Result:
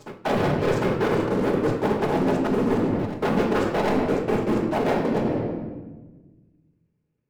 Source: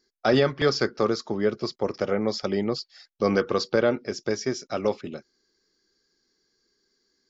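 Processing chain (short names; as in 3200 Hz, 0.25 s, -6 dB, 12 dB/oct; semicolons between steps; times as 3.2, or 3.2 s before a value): LPF 1100 Hz 12 dB/oct; noise vocoder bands 8; sample leveller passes 5; on a send: reverse echo 0.752 s -22 dB; on the sum: flange 0.72 Hz, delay 6.3 ms, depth 6 ms, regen -81%; shoebox room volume 810 m³, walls mixed, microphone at 1.4 m; reverse; compressor 5:1, threshold -28 dBFS, peak gain reduction 16.5 dB; reverse; gain +7 dB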